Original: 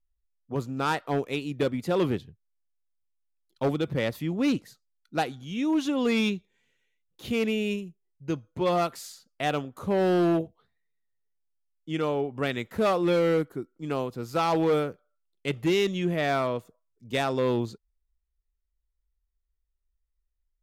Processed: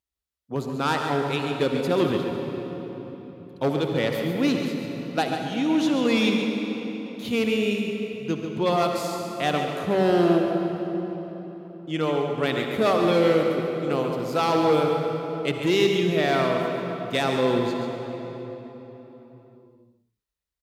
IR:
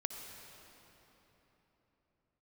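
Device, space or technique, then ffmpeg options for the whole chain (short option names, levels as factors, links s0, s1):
PA in a hall: -filter_complex "[0:a]highpass=110,equalizer=f=3900:t=o:w=0.77:g=3,aecho=1:1:139:0.355[s0];[1:a]atrim=start_sample=2205[s1];[s0][s1]afir=irnorm=-1:irlink=0,volume=1.5"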